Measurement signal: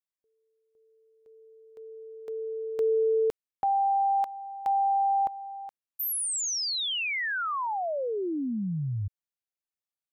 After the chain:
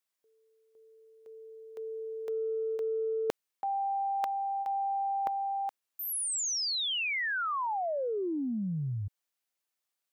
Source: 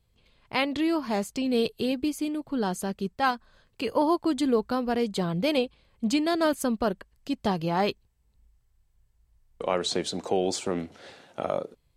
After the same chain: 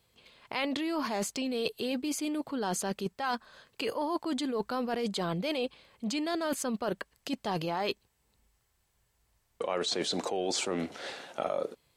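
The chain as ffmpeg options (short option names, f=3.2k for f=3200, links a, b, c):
-filter_complex "[0:a]acrossover=split=7700[a][b];[b]acompressor=threshold=-49dB:ratio=4:attack=1:release=60[c];[a][c]amix=inputs=2:normalize=0,highpass=f=410:p=1,areverse,acompressor=threshold=-40dB:ratio=10:attack=17:release=53:knee=1:detection=peak,areverse,volume=8dB"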